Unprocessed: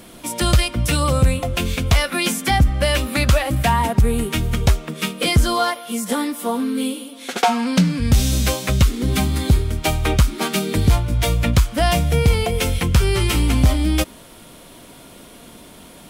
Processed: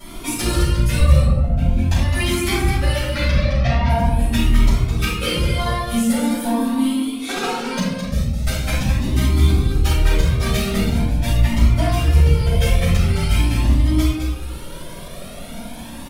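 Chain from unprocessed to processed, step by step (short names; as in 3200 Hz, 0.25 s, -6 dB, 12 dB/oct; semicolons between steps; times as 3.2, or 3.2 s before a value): 0.99–1.76 tilt shelf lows +10 dB; 3.08–3.89 steep low-pass 6000 Hz 96 dB/oct; 7.83–8.47 gate -13 dBFS, range -16 dB; transient shaper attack +7 dB, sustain -7 dB; compressor 6:1, threshold -22 dBFS, peak gain reduction 25 dB; soft clip -17.5 dBFS, distortion -16 dB; on a send: echo 0.212 s -7 dB; on the sum: shoebox room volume 280 m³, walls mixed, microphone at 6.5 m; cascading flanger rising 0.43 Hz; gain -4.5 dB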